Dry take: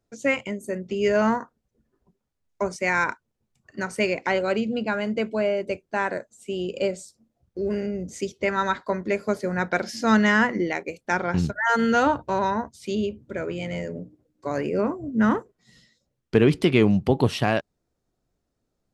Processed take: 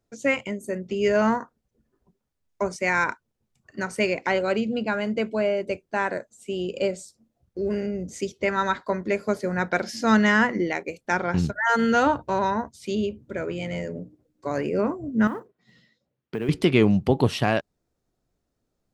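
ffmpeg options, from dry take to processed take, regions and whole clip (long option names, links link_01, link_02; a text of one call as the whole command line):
ffmpeg -i in.wav -filter_complex "[0:a]asettb=1/sr,asplit=3[link_01][link_02][link_03];[link_01]atrim=end=15.274[link_04];[link_02]atrim=start=15.27:end=16.49,asetpts=PTS-STARTPTS,afade=type=in:duration=0.004:curve=qsin,afade=type=out:start_time=1.216:duration=0.004:curve=qsin,highpass=110,lowpass=3300,acompressor=threshold=-30dB:ratio=2.5:attack=3.2:release=140:knee=1:detection=peak,acrusher=bits=9:mode=log:mix=0:aa=0.000001[link_05];[link_03]atrim=start=16.486[link_06];[link_04][link_05]acrossfade=duration=0.004:curve1=hsin:curve2=qsin[link_07];[link_07][link_06]acrossfade=duration=0.004:curve1=qsin:curve2=hsin" out.wav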